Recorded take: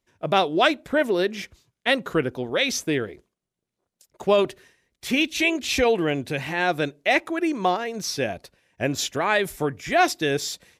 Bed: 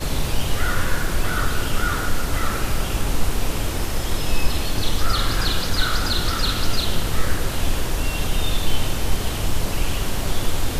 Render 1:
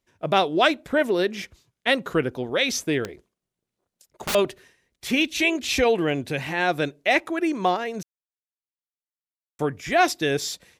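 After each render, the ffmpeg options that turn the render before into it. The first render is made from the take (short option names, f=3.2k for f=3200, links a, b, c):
-filter_complex "[0:a]asettb=1/sr,asplit=3[a][b][c];[a]atrim=end=3.034[d];[b]atrim=start=3.03:end=4.35,asetpts=PTS-STARTPTS,afade=t=in:d=0.004:c=qsin,afade=t=out:st=1.316:d=0.004:c=qsin,aeval=exprs='(mod(11.2*val(0)+1,2)-1)/11.2':c=same[e];[c]atrim=start=4.346[f];[d][e]acrossfade=d=0.004:c1=hsin:c2=qsin[g];[g][f]acrossfade=d=0.004:c1=qsin:c2=hsin,asplit=3[h][i][j];[h]atrim=end=8.03,asetpts=PTS-STARTPTS,afade=t=out:st=8.026:d=0.004:c=hsin[k];[i]atrim=start=8.03:end=9.59,asetpts=PTS-STARTPTS,volume=0[l];[j]atrim=start=9.59,asetpts=PTS-STARTPTS,afade=t=in:d=0.004:c=hsin[m];[k][l][m]concat=n=3:v=0:a=1"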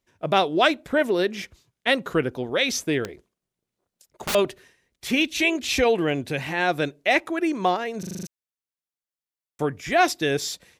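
-filter_complex "[0:a]asplit=8[a][b][c][d][e][f][g][h];[a]atrim=end=8.032[i];[b]atrim=start=7.988:end=8.032[j];[c]atrim=start=7.988:end=8.032[k];[d]atrim=start=7.988:end=8.032[l];[e]atrim=start=7.988:end=8.032[m];[f]atrim=start=7.988:end=8.032[n];[g]atrim=start=7.988:end=8.032[o];[h]atrim=start=8.268[p];[i][j]acrossfade=d=0.004:c1=hsin:c2=hsin[q];[q][k]acrossfade=d=0.004:c1=hsin:c2=hsin[r];[r][l]acrossfade=d=0.004:c1=hsin:c2=hsin[s];[s][m]acrossfade=d=0.004:c1=hsin:c2=hsin[t];[t][n]acrossfade=d=0.004:c1=hsin:c2=hsin[u];[u][o]acrossfade=d=0.004:c1=hsin:c2=hsin[v];[v][p]acrossfade=d=0.004:c1=hsin:c2=hsin"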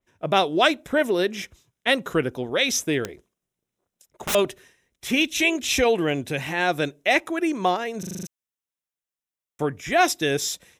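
-af "bandreject=f=4.5k:w=5,adynamicequalizer=threshold=0.0178:dfrequency=3600:dqfactor=0.7:tfrequency=3600:tqfactor=0.7:attack=5:release=100:ratio=0.375:range=2.5:mode=boostabove:tftype=highshelf"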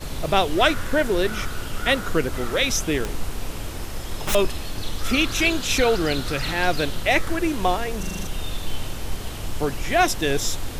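-filter_complex "[1:a]volume=-7.5dB[a];[0:a][a]amix=inputs=2:normalize=0"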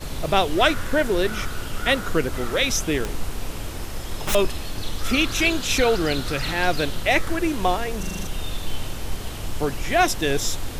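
-af anull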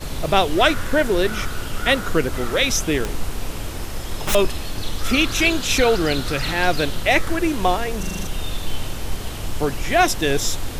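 -af "volume=2.5dB,alimiter=limit=-3dB:level=0:latency=1"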